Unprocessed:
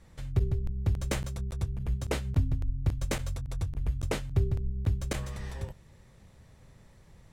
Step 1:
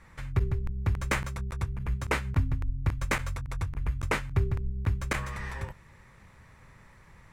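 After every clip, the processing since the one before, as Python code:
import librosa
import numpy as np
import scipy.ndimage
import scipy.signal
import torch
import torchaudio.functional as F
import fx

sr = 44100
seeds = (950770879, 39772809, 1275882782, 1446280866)

y = fx.band_shelf(x, sr, hz=1500.0, db=10.0, octaves=1.7)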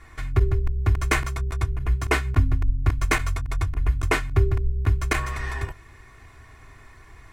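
y = x + 0.84 * np.pad(x, (int(2.8 * sr / 1000.0), 0))[:len(x)]
y = F.gain(torch.from_numpy(y), 4.5).numpy()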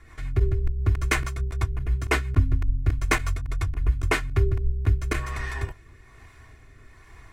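y = fx.rotary_switch(x, sr, hz=6.0, then_hz=1.2, switch_at_s=3.91)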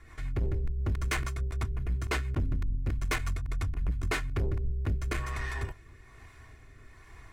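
y = 10.0 ** (-22.0 / 20.0) * np.tanh(x / 10.0 ** (-22.0 / 20.0))
y = F.gain(torch.from_numpy(y), -2.5).numpy()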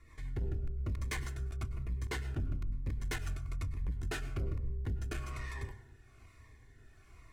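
y = fx.rev_plate(x, sr, seeds[0], rt60_s=0.68, hf_ratio=0.5, predelay_ms=90, drr_db=12.5)
y = fx.notch_cascade(y, sr, direction='falling', hz=1.1)
y = F.gain(torch.from_numpy(y), -6.0).numpy()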